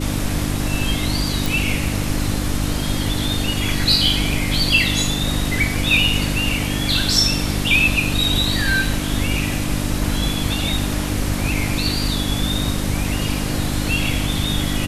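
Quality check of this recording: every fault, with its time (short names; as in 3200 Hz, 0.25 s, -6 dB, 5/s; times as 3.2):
hum 50 Hz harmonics 6 -24 dBFS
1.46 pop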